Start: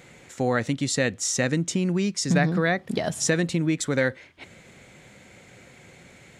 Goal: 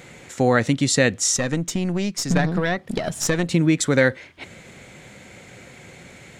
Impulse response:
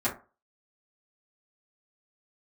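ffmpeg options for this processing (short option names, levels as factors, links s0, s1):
-filter_complex "[0:a]asettb=1/sr,asplit=3[s0][s1][s2];[s0]atrim=end=1.364[s3];[s1]atrim=start=1.36:end=3.51,asetpts=PTS-STARTPTS,afade=t=in:d=0.004:c=qsin,afade=t=out:st=2.146:d=0.004:c=qsin,aeval=exprs='(tanh(4.47*val(0)+0.8)-tanh(0.8))/4.47':c=same[s4];[s2]atrim=start=3.506[s5];[s3][s4]acrossfade=d=0.004:c1=hsin:c2=qsin[s6];[s6][s5]acrossfade=d=0.004:c1=qsin:c2=hsin,volume=2"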